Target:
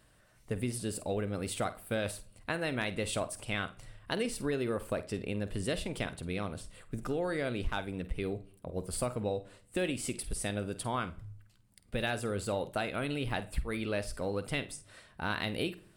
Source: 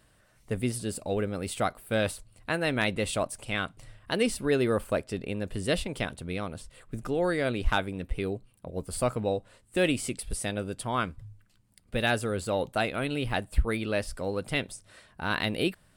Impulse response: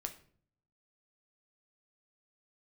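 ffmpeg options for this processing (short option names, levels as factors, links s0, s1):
-filter_complex "[0:a]acompressor=threshold=0.0398:ratio=5,asplit=2[s0][s1];[1:a]atrim=start_sample=2205,adelay=49[s2];[s1][s2]afir=irnorm=-1:irlink=0,volume=0.282[s3];[s0][s3]amix=inputs=2:normalize=0,volume=0.841"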